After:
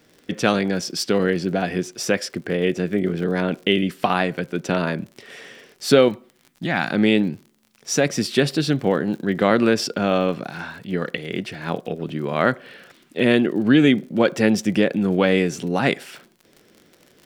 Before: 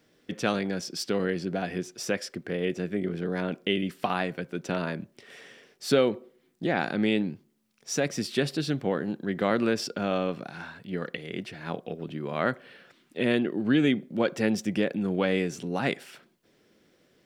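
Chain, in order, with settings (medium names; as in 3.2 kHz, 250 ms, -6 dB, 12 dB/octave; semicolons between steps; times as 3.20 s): 6.08–6.91 s: peaking EQ 440 Hz -14.5 dB 0.92 oct; crackle 46 per s -43 dBFS; trim +8 dB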